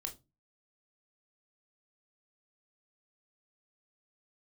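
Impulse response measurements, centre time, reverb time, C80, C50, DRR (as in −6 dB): 12 ms, 0.25 s, 24.0 dB, 15.0 dB, 4.0 dB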